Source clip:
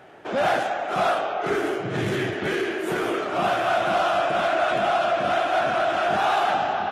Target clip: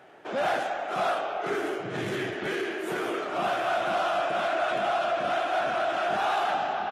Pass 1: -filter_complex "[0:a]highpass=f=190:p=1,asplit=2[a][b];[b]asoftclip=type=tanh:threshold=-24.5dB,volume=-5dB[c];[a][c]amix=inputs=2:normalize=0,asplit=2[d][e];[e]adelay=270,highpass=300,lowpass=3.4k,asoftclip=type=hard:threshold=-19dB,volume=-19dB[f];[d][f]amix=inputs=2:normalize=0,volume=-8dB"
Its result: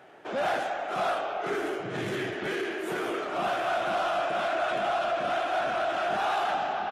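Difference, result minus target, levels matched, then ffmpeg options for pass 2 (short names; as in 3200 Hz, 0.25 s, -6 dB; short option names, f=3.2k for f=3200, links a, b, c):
soft clip: distortion +10 dB
-filter_complex "[0:a]highpass=f=190:p=1,asplit=2[a][b];[b]asoftclip=type=tanh:threshold=-15.5dB,volume=-5dB[c];[a][c]amix=inputs=2:normalize=0,asplit=2[d][e];[e]adelay=270,highpass=300,lowpass=3.4k,asoftclip=type=hard:threshold=-19dB,volume=-19dB[f];[d][f]amix=inputs=2:normalize=0,volume=-8dB"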